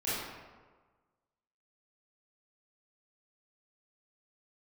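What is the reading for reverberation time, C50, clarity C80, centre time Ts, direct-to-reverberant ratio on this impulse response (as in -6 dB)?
1.4 s, -3.0 dB, 1.0 dB, 0.102 s, -12.5 dB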